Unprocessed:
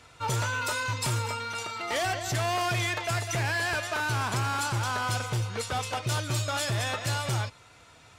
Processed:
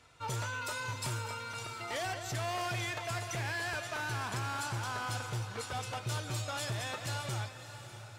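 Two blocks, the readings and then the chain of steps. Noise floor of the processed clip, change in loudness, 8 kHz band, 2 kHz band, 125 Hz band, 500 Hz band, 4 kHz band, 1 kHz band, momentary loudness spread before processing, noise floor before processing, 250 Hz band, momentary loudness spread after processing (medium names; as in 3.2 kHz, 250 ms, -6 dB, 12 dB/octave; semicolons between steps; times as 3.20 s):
-49 dBFS, -7.5 dB, -7.5 dB, -7.5 dB, -8.0 dB, -7.5 dB, -7.5 dB, -7.5 dB, 4 LU, -55 dBFS, -7.5 dB, 5 LU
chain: echo that smears into a reverb 621 ms, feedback 44%, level -11 dB; trim -8 dB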